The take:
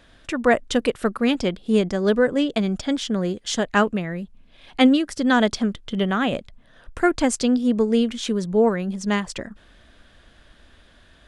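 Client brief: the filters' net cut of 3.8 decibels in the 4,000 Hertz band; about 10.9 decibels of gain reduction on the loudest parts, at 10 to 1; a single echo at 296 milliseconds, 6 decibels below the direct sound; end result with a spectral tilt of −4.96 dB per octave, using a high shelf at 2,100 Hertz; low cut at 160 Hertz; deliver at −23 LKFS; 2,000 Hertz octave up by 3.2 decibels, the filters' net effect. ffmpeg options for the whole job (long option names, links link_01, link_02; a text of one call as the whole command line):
ffmpeg -i in.wav -af "highpass=160,equalizer=frequency=2000:width_type=o:gain=7,highshelf=frequency=2100:gain=-3.5,equalizer=frequency=4000:width_type=o:gain=-5,acompressor=threshold=-23dB:ratio=10,aecho=1:1:296:0.501,volume=5dB" out.wav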